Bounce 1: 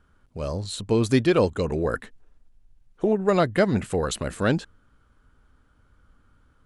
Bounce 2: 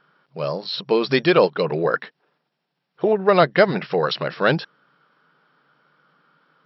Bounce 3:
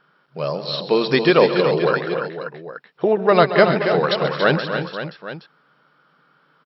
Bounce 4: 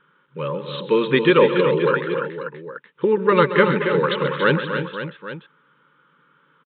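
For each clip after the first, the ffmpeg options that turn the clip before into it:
-af "afftfilt=real='re*between(b*sr/4096,130,5600)':imag='im*between(b*sr/4096,130,5600)':win_size=4096:overlap=0.75,equalizer=f=240:t=o:w=1:g=-12.5,volume=2.51"
-af "aecho=1:1:132|223|279|307|524|819:0.224|0.15|0.398|0.168|0.266|0.178,volume=1.12"
-af "aresample=8000,aresample=44100,asuperstop=centerf=700:order=12:qfactor=2.6"

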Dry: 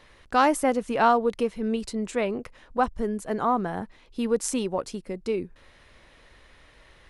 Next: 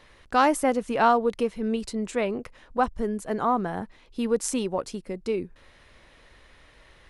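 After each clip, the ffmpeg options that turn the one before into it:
-af anull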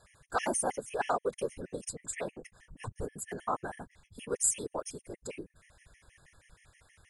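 -af "equalizer=f=125:t=o:w=1:g=-11,equalizer=f=250:t=o:w=1:g=-10,equalizer=f=500:t=o:w=1:g=-4,equalizer=f=1000:t=o:w=1:g=-5,equalizer=f=4000:t=o:w=1:g=-11,equalizer=f=8000:t=o:w=1:g=12,afftfilt=real='hypot(re,im)*cos(2*PI*random(0))':imag='hypot(re,im)*sin(2*PI*random(1))':win_size=512:overlap=0.75,afftfilt=real='re*gt(sin(2*PI*6.3*pts/sr)*(1-2*mod(floor(b*sr/1024/1700),2)),0)':imag='im*gt(sin(2*PI*6.3*pts/sr)*(1-2*mod(floor(b*sr/1024/1700),2)),0)':win_size=1024:overlap=0.75,volume=1.78"

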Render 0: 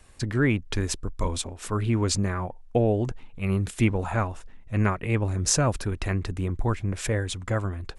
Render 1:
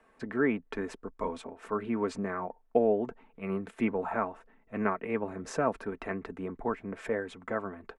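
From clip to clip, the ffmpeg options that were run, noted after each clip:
-filter_complex "[0:a]acrossover=split=220 2100:gain=0.0794 1 0.0794[s0][s1][s2];[s0][s1][s2]amix=inputs=3:normalize=0,aecho=1:1:4.5:0.43,volume=0.794"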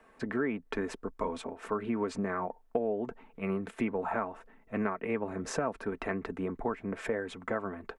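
-af "acompressor=threshold=0.0251:ratio=4,volume=1.5"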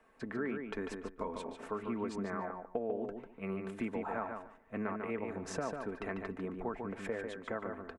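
-filter_complex "[0:a]asplit=2[s0][s1];[s1]adelay=146,lowpass=f=4800:p=1,volume=0.562,asplit=2[s2][s3];[s3]adelay=146,lowpass=f=4800:p=1,volume=0.19,asplit=2[s4][s5];[s5]adelay=146,lowpass=f=4800:p=1,volume=0.19[s6];[s0][s2][s4][s6]amix=inputs=4:normalize=0,volume=0.501"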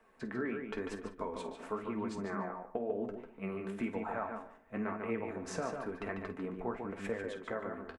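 -filter_complex "[0:a]flanger=delay=8.4:depth=9.6:regen=45:speed=0.98:shape=triangular,asplit=2[s0][s1];[s1]adelay=50,volume=0.224[s2];[s0][s2]amix=inputs=2:normalize=0,volume=1.58"

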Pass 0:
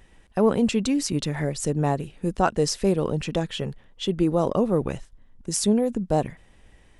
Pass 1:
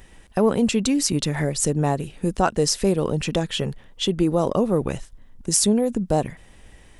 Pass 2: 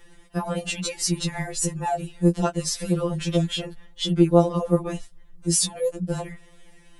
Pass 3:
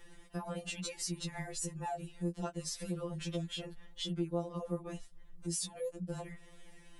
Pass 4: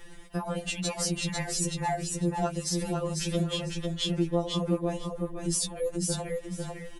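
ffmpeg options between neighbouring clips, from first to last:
-filter_complex "[0:a]asplit=2[s0][s1];[s1]acompressor=threshold=0.0398:ratio=6,volume=1.26[s2];[s0][s2]amix=inputs=2:normalize=0,highshelf=f=6100:g=6.5,volume=0.841"
-af "afftfilt=real='re*2.83*eq(mod(b,8),0)':imag='im*2.83*eq(mod(b,8),0)':win_size=2048:overlap=0.75"
-af "acompressor=threshold=0.0112:ratio=2,volume=0.596"
-af "aecho=1:1:499|998|1497:0.668|0.134|0.0267,volume=2.51"

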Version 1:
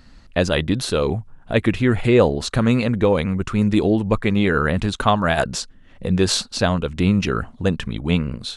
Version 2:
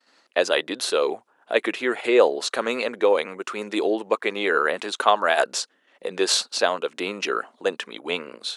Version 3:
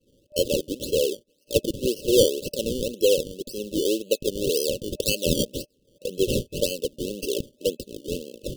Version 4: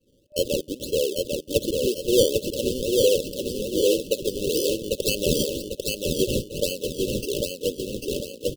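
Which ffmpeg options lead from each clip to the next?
-af "agate=range=0.0224:threshold=0.00794:ratio=3:detection=peak,highpass=f=380:w=0.5412,highpass=f=380:w=1.3066"
-af "lowpass=f=7200:w=0.5412,lowpass=f=7200:w=1.3066,acrusher=samples=23:mix=1:aa=0.000001:lfo=1:lforange=23:lforate=1.9,afftfilt=real='re*(1-between(b*sr/4096,600,2600))':imag='im*(1-between(b*sr/4096,600,2600))':win_size=4096:overlap=0.75"
-af "aecho=1:1:796|1592|2388|3184|3980:0.708|0.29|0.119|0.0488|0.02,volume=0.891"

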